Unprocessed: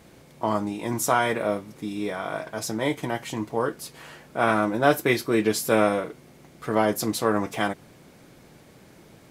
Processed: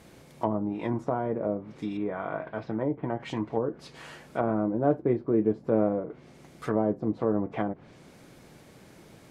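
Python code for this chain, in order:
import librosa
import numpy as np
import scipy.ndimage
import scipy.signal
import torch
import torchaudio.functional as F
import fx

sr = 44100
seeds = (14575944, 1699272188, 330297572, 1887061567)

y = fx.env_lowpass_down(x, sr, base_hz=530.0, full_db=-21.5)
y = fx.air_absorb(y, sr, metres=370.0, at=(1.97, 3.2))
y = F.gain(torch.from_numpy(y), -1.0).numpy()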